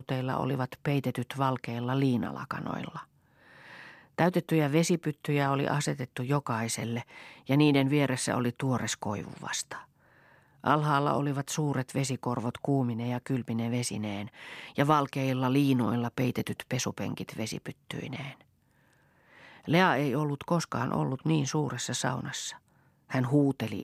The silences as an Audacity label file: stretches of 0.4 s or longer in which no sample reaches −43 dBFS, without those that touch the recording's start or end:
3.030000	3.610000	silence
9.820000	10.640000	silence
18.410000	19.430000	silence
22.560000	23.100000	silence